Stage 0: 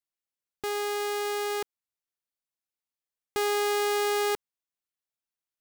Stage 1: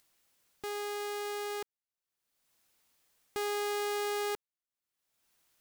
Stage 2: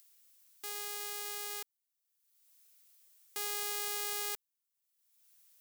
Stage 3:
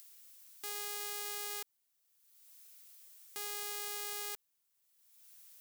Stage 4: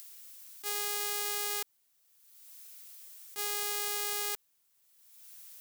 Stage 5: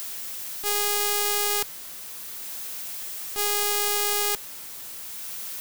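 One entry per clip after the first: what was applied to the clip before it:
upward compressor, threshold -44 dBFS; trim -7 dB
tilt EQ +4.5 dB/octave; trim -8 dB
peak limiter -28 dBFS, peak gain reduction 11 dB; trim +7 dB
attacks held to a fixed rise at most 380 dB/s; trim +7 dB
jump at every zero crossing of -41.5 dBFS; trim +9 dB

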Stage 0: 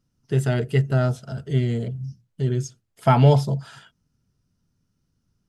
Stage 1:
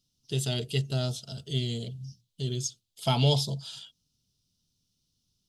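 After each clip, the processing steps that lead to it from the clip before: resonant high shelf 2.5 kHz +12.5 dB, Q 3; trim -9 dB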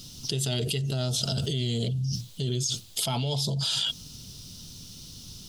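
level flattener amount 100%; trim -8 dB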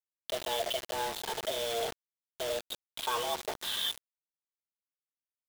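delay 77 ms -12.5 dB; mistuned SSB +230 Hz 240–3100 Hz; bit crusher 6-bit

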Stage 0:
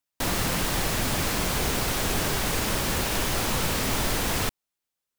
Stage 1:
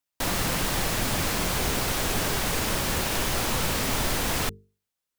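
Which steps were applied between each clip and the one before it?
hum notches 50/100/150/200/250/300/350/400/450 Hz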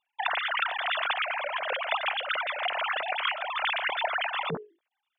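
formants replaced by sine waves; compressor with a negative ratio -29 dBFS, ratio -0.5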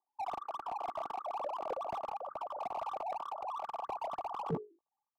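high-pass sweep 310 Hz -> 97 Hz, 1.91–2.46 s; rippled Chebyshev low-pass 1.2 kHz, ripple 6 dB; slew-rate limiter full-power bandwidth 15 Hz

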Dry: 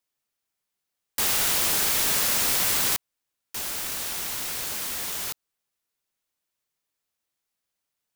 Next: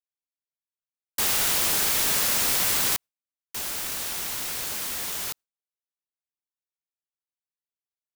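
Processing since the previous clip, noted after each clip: gate with hold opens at -27 dBFS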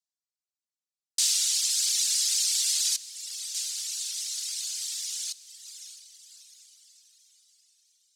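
echo that smears into a reverb 630 ms, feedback 46%, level -9.5 dB; reverb removal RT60 1.8 s; Butterworth band-pass 5.9 kHz, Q 1.3; trim +7 dB

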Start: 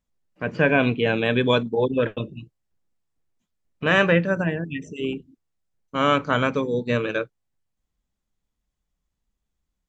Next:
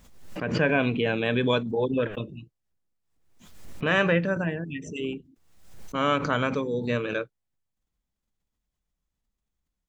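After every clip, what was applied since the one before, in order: swell ahead of each attack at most 63 dB/s; trim -4.5 dB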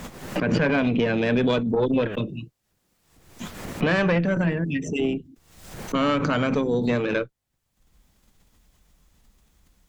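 dynamic bell 210 Hz, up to +5 dB, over -36 dBFS, Q 0.72; valve stage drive 15 dB, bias 0.5; three bands compressed up and down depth 70%; trim +4 dB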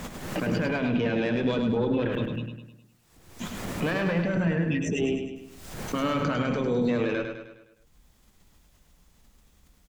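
peak limiter -19 dBFS, peak gain reduction 10 dB; on a send: feedback delay 103 ms, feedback 49%, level -6 dB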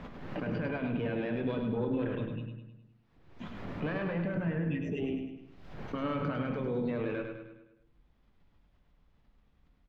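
distance through air 320 m; on a send at -11 dB: reverberation RT60 0.75 s, pre-delay 7 ms; on the sum: trim -6.5 dB

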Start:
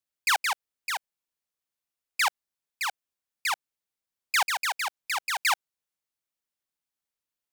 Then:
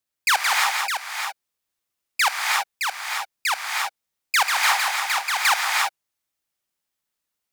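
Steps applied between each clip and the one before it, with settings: reverberation, pre-delay 3 ms, DRR 0 dB; trim +4.5 dB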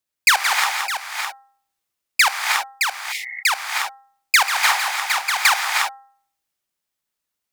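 de-hum 266.6 Hz, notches 7; spectral replace 3.14–3.40 s, 370–2200 Hz after; transient shaper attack +8 dB, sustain +2 dB

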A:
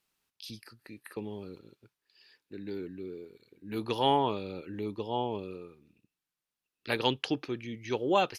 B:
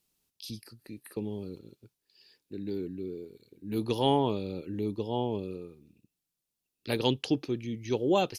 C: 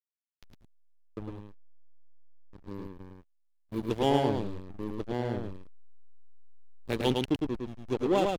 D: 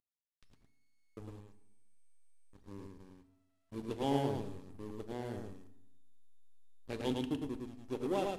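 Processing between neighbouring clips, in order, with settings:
peaking EQ 1.5 kHz -13 dB 2.4 oct; trim +6 dB
hysteresis with a dead band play -25 dBFS; delay 108 ms -3.5 dB
CVSD coder 64 kbps; reverberation RT60 0.80 s, pre-delay 4 ms, DRR 9.5 dB; trim -9 dB

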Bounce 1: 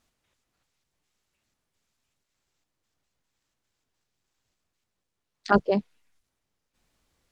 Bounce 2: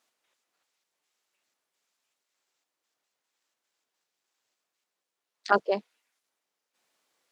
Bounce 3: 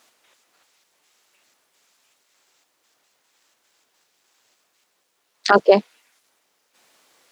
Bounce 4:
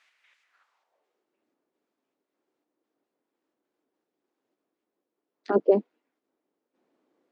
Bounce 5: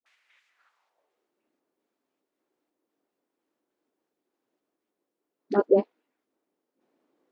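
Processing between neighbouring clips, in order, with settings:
high-pass 440 Hz 12 dB/octave
loudness maximiser +17.5 dB; trim -1 dB
band-pass sweep 2.1 kHz -> 300 Hz, 0.43–1.27 s; trim +1 dB
phase dispersion highs, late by 61 ms, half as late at 440 Hz

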